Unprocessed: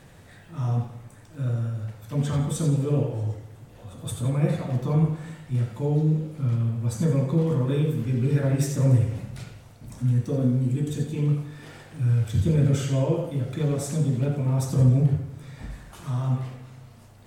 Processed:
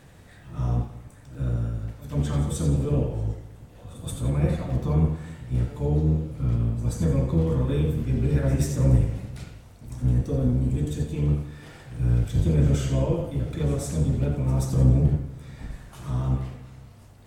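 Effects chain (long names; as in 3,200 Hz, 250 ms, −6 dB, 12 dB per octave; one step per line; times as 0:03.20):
sub-octave generator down 1 octave, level −3 dB
echo ahead of the sound 131 ms −17 dB
level −1.5 dB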